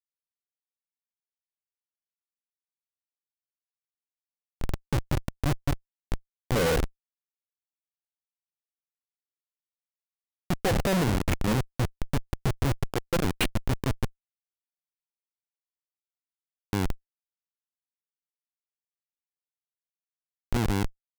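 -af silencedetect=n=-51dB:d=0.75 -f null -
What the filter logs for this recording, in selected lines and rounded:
silence_start: 0.00
silence_end: 4.61 | silence_duration: 4.61
silence_start: 6.89
silence_end: 10.50 | silence_duration: 3.61
silence_start: 14.10
silence_end: 16.73 | silence_duration: 2.63
silence_start: 16.96
silence_end: 20.53 | silence_duration: 3.56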